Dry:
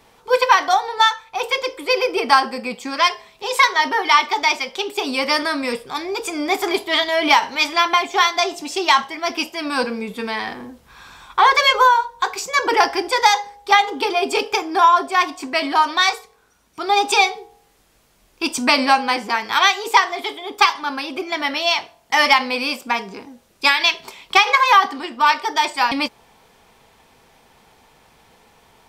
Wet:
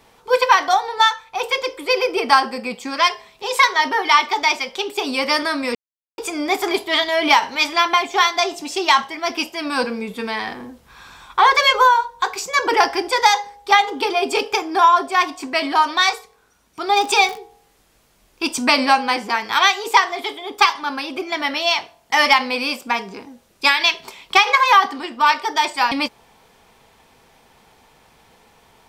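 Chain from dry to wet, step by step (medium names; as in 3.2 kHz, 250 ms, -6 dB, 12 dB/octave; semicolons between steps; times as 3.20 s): 5.75–6.18 s: mute; 16.95–17.36 s: crackle 150 per s -23 dBFS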